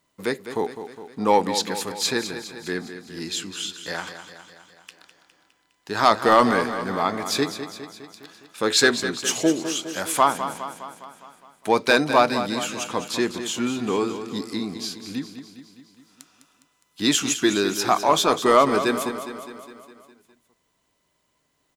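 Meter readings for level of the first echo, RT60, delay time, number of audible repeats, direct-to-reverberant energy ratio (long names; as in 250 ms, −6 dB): −10.5 dB, no reverb audible, 205 ms, 6, no reverb audible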